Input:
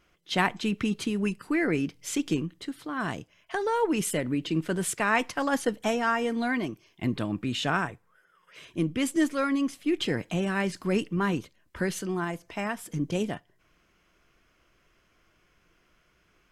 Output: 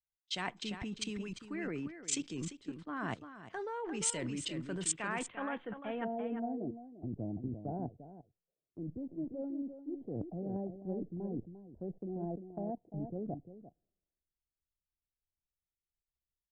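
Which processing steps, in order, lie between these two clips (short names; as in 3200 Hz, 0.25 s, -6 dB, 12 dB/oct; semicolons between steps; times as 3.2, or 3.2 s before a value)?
elliptic low-pass 8400 Hz, stop band 40 dB, from 4.91 s 3400 Hz, from 6.03 s 740 Hz; level quantiser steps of 18 dB; echo 0.348 s -7 dB; three-band expander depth 100%; gain -2.5 dB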